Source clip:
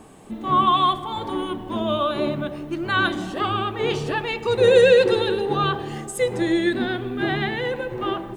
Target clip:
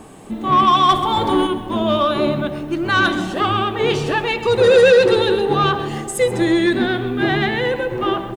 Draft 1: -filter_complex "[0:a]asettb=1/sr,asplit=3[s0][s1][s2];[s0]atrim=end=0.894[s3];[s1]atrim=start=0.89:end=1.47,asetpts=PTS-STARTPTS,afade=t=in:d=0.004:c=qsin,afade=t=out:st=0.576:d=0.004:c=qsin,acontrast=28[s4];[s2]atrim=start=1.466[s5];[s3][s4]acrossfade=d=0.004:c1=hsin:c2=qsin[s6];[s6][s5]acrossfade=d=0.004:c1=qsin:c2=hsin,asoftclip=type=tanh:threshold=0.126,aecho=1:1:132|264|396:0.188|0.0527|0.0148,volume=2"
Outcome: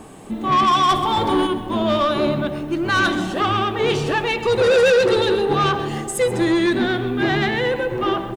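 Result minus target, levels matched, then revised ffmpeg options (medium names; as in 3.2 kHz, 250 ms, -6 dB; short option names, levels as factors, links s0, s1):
saturation: distortion +6 dB
-filter_complex "[0:a]asettb=1/sr,asplit=3[s0][s1][s2];[s0]atrim=end=0.894[s3];[s1]atrim=start=0.89:end=1.47,asetpts=PTS-STARTPTS,afade=t=in:d=0.004:c=qsin,afade=t=out:st=0.576:d=0.004:c=qsin,acontrast=28[s4];[s2]atrim=start=1.466[s5];[s3][s4]acrossfade=d=0.004:c1=hsin:c2=qsin[s6];[s6][s5]acrossfade=d=0.004:c1=qsin:c2=hsin,asoftclip=type=tanh:threshold=0.251,aecho=1:1:132|264|396:0.188|0.0527|0.0148,volume=2"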